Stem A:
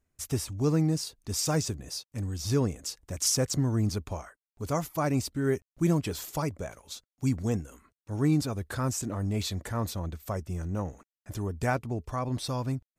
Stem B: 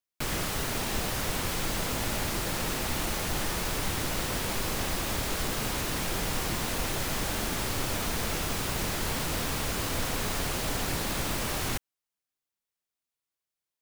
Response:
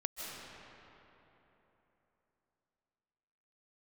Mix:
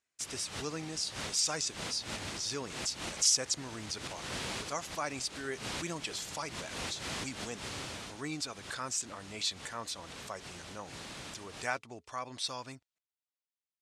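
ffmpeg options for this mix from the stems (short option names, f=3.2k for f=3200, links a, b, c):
-filter_complex "[0:a]highpass=f=1.4k:p=1,volume=-1dB,asplit=2[a][b];[1:a]highpass=74,volume=-7dB,afade=t=out:st=7.53:d=0.56:silence=0.421697[c];[b]apad=whole_len=609309[d];[c][d]sidechaincompress=threshold=-50dB:ratio=8:attack=5.7:release=111[e];[a][e]amix=inputs=2:normalize=0,lowpass=f=9.4k:w=0.5412,lowpass=f=9.4k:w=1.3066,equalizer=f=3.4k:w=0.7:g=4.5"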